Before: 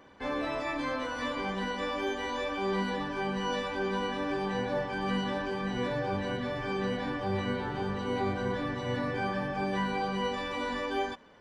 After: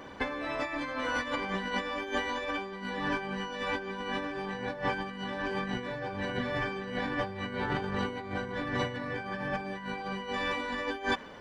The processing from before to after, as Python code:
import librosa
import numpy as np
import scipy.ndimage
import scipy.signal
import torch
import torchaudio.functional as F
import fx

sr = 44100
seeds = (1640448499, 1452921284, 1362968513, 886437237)

y = fx.dynamic_eq(x, sr, hz=1900.0, q=1.2, threshold_db=-50.0, ratio=4.0, max_db=5)
y = fx.over_compress(y, sr, threshold_db=-36.0, ratio=-0.5)
y = y * librosa.db_to_amplitude(3.5)